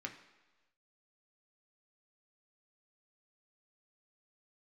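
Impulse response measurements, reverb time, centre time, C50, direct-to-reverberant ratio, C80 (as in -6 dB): 1.2 s, 15 ms, 10.5 dB, 2.5 dB, 12.5 dB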